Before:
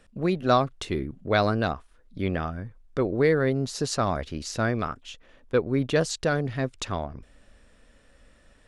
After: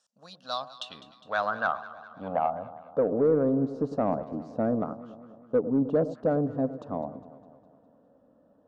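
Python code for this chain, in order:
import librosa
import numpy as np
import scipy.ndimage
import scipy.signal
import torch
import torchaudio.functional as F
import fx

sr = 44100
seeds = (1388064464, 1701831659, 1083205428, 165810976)

p1 = scipy.signal.sosfilt(scipy.signal.butter(2, 250.0, 'highpass', fs=sr, output='sos'), x)
p2 = fx.tilt_eq(p1, sr, slope=-3.5)
p3 = fx.level_steps(p2, sr, step_db=13)
p4 = p2 + F.gain(torch.from_numpy(p3), -1.0).numpy()
p5 = fx.fixed_phaser(p4, sr, hz=890.0, stages=4)
p6 = fx.filter_sweep_bandpass(p5, sr, from_hz=6200.0, to_hz=350.0, start_s=0.13, end_s=3.29, q=2.8)
p7 = 10.0 ** (-22.5 / 20.0) * np.tanh(p6 / 10.0 ** (-22.5 / 20.0))
p8 = p7 + fx.echo_alternate(p7, sr, ms=102, hz=980.0, feedback_pct=75, wet_db=-13.0, dry=0)
y = F.gain(torch.from_numpy(p8), 9.0).numpy()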